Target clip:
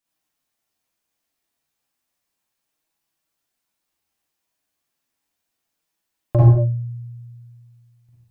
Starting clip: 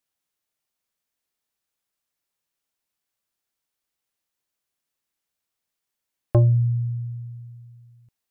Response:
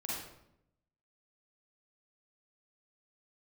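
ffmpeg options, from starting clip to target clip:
-filter_complex "[1:a]atrim=start_sample=2205,afade=t=out:st=0.29:d=0.01,atrim=end_sample=13230[s0];[0:a][s0]afir=irnorm=-1:irlink=0,flanger=delay=6:depth=8.3:regen=53:speed=0.33:shape=sinusoidal,volume=2.51"

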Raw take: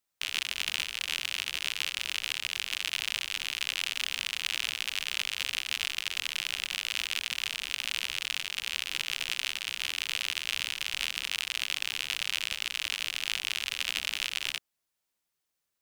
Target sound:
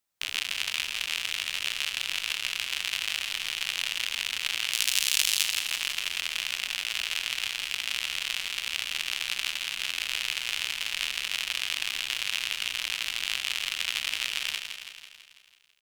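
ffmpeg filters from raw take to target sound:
-filter_complex "[0:a]asettb=1/sr,asplit=3[s0][s1][s2];[s0]atrim=end=4.724[s3];[s1]atrim=start=4.72:end=5.44,asetpts=PTS-STARTPTS,afade=t=in:d=0.004:c=qsin,afade=t=out:st=0.716:d=0.004:c=qsin,bass=f=250:g=-1,treble=f=4000:g=14[s4];[s2]atrim=start=5.436[s5];[s3][s4]acrossfade=d=0.004:c1=hsin:c2=qsin[s6];[s6][s5]acrossfade=d=0.004:c1=qsin:c2=hsin,aecho=1:1:165|330|495|660|825|990|1155|1320:0.447|0.268|0.161|0.0965|0.0579|0.0347|0.0208|0.0125,volume=1.12"

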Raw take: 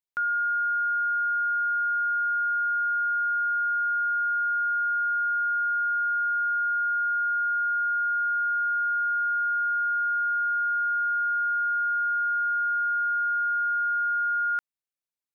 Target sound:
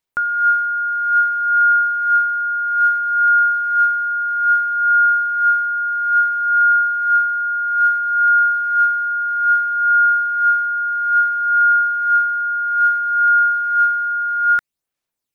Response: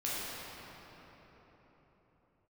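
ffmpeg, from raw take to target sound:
-af "aphaser=in_gain=1:out_gain=1:delay=1.1:decay=0.45:speed=0.6:type=sinusoidal,volume=2.66"

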